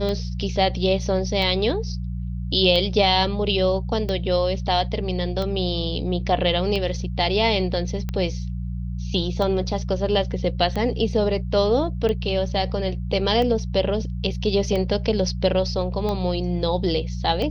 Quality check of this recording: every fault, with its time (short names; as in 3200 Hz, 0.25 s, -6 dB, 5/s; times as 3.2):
hum 60 Hz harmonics 3 -28 dBFS
tick 45 rpm -15 dBFS